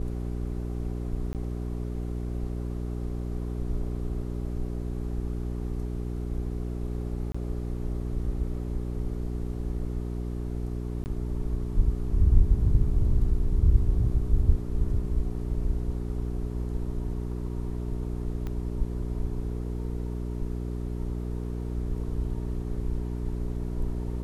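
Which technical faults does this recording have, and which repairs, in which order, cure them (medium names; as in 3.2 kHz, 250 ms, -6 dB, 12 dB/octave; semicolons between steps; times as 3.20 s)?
hum 60 Hz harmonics 7 -32 dBFS
1.33–1.35 s: dropout 18 ms
7.32–7.34 s: dropout 25 ms
11.04–11.06 s: dropout 19 ms
18.47 s: pop -23 dBFS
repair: de-click; de-hum 60 Hz, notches 7; interpolate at 1.33 s, 18 ms; interpolate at 7.32 s, 25 ms; interpolate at 11.04 s, 19 ms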